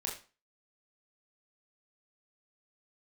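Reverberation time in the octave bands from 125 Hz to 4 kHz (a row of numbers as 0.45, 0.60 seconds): 0.35, 0.35, 0.35, 0.35, 0.30, 0.30 seconds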